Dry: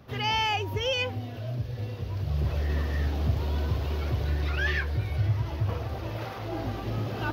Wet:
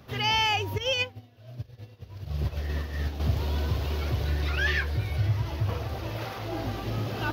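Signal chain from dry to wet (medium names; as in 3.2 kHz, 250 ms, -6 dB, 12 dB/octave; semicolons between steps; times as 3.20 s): treble shelf 2.4 kHz +5.5 dB; 0.78–3.20 s: upward expansion 2.5:1, over -38 dBFS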